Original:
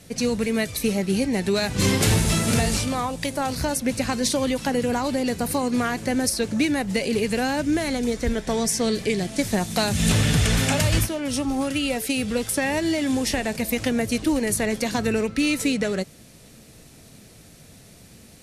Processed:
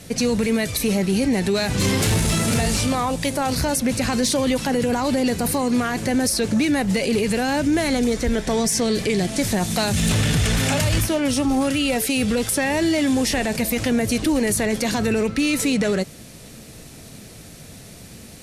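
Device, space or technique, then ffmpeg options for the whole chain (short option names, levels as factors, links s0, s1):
soft clipper into limiter: -af "asoftclip=type=tanh:threshold=0.266,alimiter=limit=0.1:level=0:latency=1:release=29,volume=2.24"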